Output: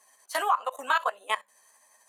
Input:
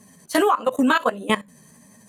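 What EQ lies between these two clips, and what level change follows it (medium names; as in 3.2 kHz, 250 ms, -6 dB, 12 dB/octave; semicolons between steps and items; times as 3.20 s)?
ladder high-pass 630 Hz, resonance 30%; 0.0 dB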